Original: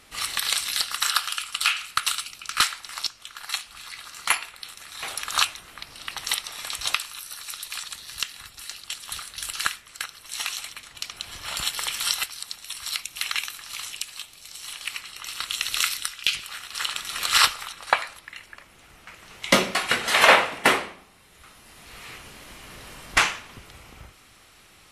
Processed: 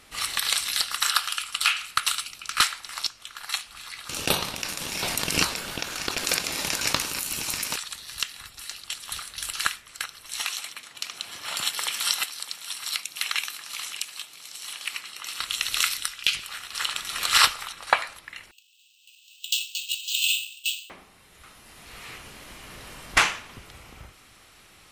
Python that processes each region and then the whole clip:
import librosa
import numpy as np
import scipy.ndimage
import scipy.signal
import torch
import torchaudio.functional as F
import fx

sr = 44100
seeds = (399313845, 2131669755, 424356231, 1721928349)

y = fx.chain(x, sr, fx.ring_mod(carrier_hz=1500.0),
    fx.env_flatten(amount_pct=50), at=(4.09, 7.76))
y = fx.chain(y, sr, fx.highpass(hz=180.0, slope=12),
    fx.echo_single(ms=607, db=-15.5), at=(10.42, 15.39))
y = fx.chain(y, sr, fx.cheby1_highpass(hz=2600.0, order=10),
    fx.resample_bad(factor=4, down='filtered', up='hold'), at=(18.51, 20.9))